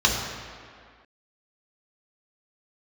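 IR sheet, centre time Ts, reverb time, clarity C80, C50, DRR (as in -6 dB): 73 ms, 2.1 s, 4.0 dB, 2.5 dB, -1.5 dB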